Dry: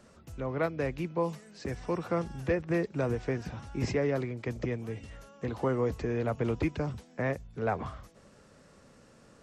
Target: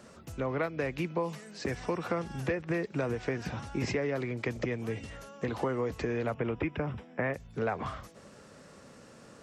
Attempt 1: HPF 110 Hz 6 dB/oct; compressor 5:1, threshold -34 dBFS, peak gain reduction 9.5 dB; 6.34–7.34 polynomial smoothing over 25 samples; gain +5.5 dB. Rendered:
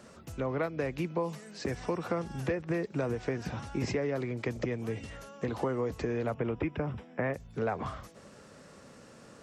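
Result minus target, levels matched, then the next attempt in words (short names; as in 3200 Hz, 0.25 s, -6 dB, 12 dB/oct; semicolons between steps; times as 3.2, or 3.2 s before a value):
2000 Hz band -2.5 dB
HPF 110 Hz 6 dB/oct; dynamic EQ 2300 Hz, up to +4 dB, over -49 dBFS, Q 0.71; compressor 5:1, threshold -34 dBFS, peak gain reduction 10 dB; 6.34–7.34 polynomial smoothing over 25 samples; gain +5.5 dB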